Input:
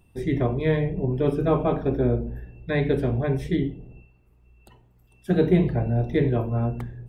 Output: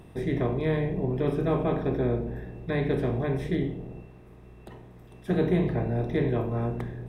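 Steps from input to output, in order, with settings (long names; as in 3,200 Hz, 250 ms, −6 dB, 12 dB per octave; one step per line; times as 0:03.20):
compressor on every frequency bin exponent 0.6
level −7 dB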